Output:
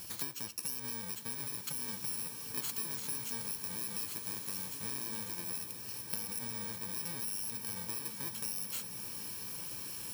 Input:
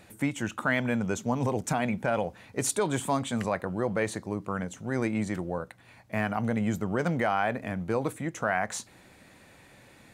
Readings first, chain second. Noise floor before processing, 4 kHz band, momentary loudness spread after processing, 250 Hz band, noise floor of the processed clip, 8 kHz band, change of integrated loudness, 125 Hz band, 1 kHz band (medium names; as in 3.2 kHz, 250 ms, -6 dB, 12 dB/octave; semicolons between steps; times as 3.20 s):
-56 dBFS, +0.5 dB, 4 LU, -19.5 dB, -45 dBFS, 0.0 dB, -7.0 dB, -17.5 dB, -19.0 dB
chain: bit-reversed sample order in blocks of 64 samples; in parallel at +2 dB: peak limiter -22.5 dBFS, peak gain reduction 9 dB; on the sum: compression 20:1, threshold -37 dBFS, peak gain reduction 20 dB; tilt shelf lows -5 dB, about 890 Hz; swelling reverb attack 1820 ms, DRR 4 dB; trim -2 dB